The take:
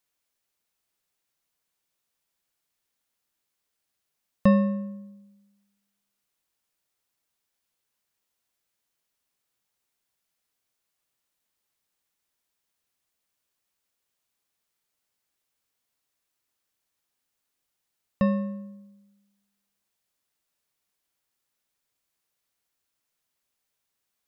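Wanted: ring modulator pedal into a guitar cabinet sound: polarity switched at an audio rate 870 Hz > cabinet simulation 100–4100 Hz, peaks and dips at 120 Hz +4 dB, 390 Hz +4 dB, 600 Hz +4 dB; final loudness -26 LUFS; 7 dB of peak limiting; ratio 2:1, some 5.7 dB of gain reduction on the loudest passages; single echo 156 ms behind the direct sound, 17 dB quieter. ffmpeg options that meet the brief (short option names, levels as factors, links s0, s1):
-af "acompressor=threshold=0.0631:ratio=2,alimiter=limit=0.106:level=0:latency=1,aecho=1:1:156:0.141,aeval=exprs='val(0)*sgn(sin(2*PI*870*n/s))':c=same,highpass=100,equalizer=f=120:t=q:w=4:g=4,equalizer=f=390:t=q:w=4:g=4,equalizer=f=600:t=q:w=4:g=4,lowpass=f=4100:w=0.5412,lowpass=f=4100:w=1.3066,volume=1.58"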